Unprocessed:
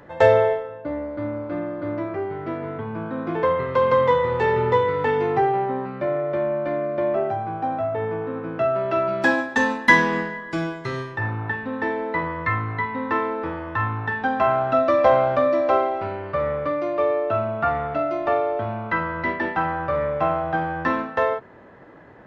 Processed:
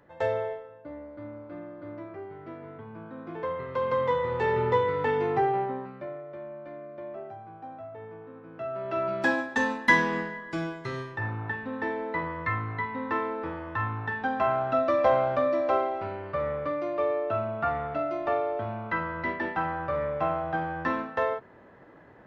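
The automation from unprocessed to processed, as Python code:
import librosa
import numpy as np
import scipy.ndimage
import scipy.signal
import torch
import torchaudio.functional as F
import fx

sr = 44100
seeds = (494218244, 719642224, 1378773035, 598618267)

y = fx.gain(x, sr, db=fx.line((3.25, -13.0), (4.59, -5.0), (5.6, -5.0), (6.25, -17.0), (8.46, -17.0), (9.05, -6.0)))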